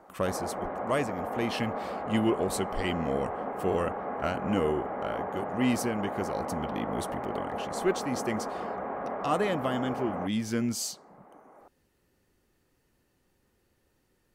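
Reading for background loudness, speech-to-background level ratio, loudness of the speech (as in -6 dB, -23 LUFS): -35.5 LUFS, 3.5 dB, -32.0 LUFS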